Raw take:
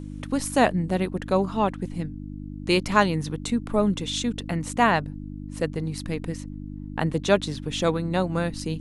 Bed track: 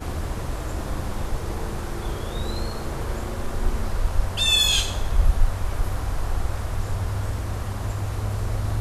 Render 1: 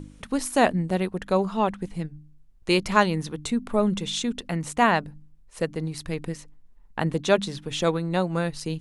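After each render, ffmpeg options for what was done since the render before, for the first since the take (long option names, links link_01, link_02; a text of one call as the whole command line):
ffmpeg -i in.wav -af "bandreject=frequency=50:width_type=h:width=4,bandreject=frequency=100:width_type=h:width=4,bandreject=frequency=150:width_type=h:width=4,bandreject=frequency=200:width_type=h:width=4,bandreject=frequency=250:width_type=h:width=4,bandreject=frequency=300:width_type=h:width=4" out.wav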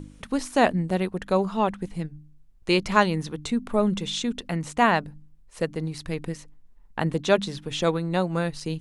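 ffmpeg -i in.wav -filter_complex "[0:a]acrossover=split=7400[link_01][link_02];[link_02]acompressor=threshold=-47dB:ratio=4:attack=1:release=60[link_03];[link_01][link_03]amix=inputs=2:normalize=0" out.wav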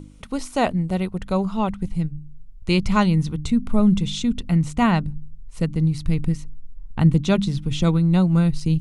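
ffmpeg -i in.wav -af "bandreject=frequency=1700:width=5.8,asubboost=boost=8.5:cutoff=170" out.wav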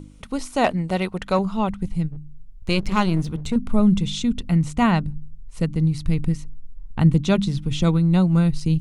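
ffmpeg -i in.wav -filter_complex "[0:a]asettb=1/sr,asplit=3[link_01][link_02][link_03];[link_01]atrim=end=0.644[link_04];[link_02]atrim=start=0.64:end=1.39,asetpts=PTS-STARTPTS,afade=type=in:duration=0.004:curve=qsin,afade=type=out:start_time=0.746:duration=0.004:curve=qsin,asplit=2[link_05][link_06];[link_06]highpass=frequency=720:poles=1,volume=13dB,asoftclip=type=tanh:threshold=-5.5dB[link_07];[link_05][link_07]amix=inputs=2:normalize=0,lowpass=frequency=5000:poles=1,volume=-6dB[link_08];[link_03]atrim=start=1.386[link_09];[link_04][link_08]acrossfade=duration=0.004:curve1=hsin:curve2=qsin[link_10];[link_10][link_09]acrossfade=duration=0.004:curve1=qsin:curve2=hsin,asettb=1/sr,asplit=3[link_11][link_12][link_13];[link_11]atrim=end=2.084[link_14];[link_12]atrim=start=2.08:end=3.56,asetpts=PTS-STARTPTS,afade=type=in:duration=0.004:curve=qsin,afade=type=out:start_time=1.476:duration=0.004:curve=qsin,aeval=exprs='clip(val(0),-1,0.0447)':channel_layout=same[link_15];[link_13]atrim=start=3.556[link_16];[link_14][link_15]acrossfade=duration=0.004:curve1=hsin:curve2=qsin[link_17];[link_17][link_16]acrossfade=duration=0.004:curve1=qsin:curve2=hsin" out.wav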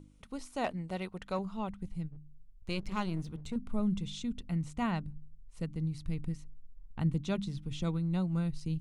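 ffmpeg -i in.wav -af "volume=-14.5dB" out.wav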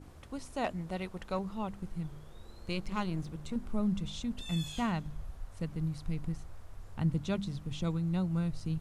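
ffmpeg -i in.wav -i bed.wav -filter_complex "[1:a]volume=-25dB[link_01];[0:a][link_01]amix=inputs=2:normalize=0" out.wav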